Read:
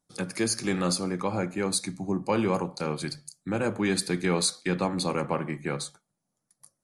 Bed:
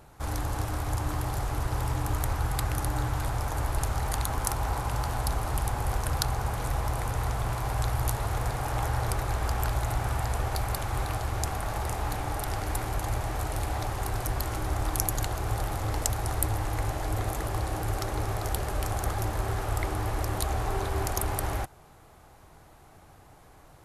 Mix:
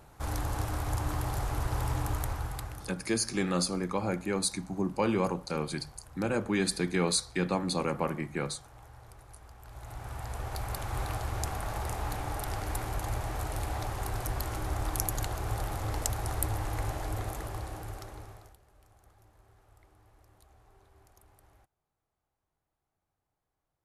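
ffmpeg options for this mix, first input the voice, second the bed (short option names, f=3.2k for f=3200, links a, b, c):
-filter_complex "[0:a]adelay=2700,volume=-2.5dB[a];[1:a]volume=18dB,afade=t=out:st=1.99:d=0.96:silence=0.0841395,afade=t=in:st=9.63:d=1.41:silence=0.1,afade=t=out:st=16.9:d=1.67:silence=0.0375837[b];[a][b]amix=inputs=2:normalize=0"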